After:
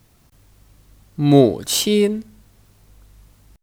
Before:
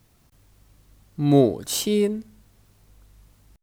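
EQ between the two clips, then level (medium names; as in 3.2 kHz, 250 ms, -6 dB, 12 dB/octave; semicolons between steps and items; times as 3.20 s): dynamic bell 3.1 kHz, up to +4 dB, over -43 dBFS, Q 0.74; +4.5 dB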